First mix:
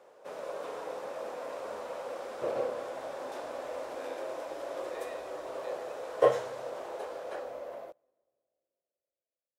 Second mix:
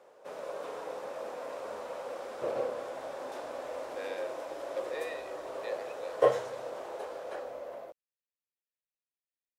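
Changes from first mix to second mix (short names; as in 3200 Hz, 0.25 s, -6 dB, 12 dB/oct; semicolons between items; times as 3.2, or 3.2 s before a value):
speech +7.5 dB; reverb: off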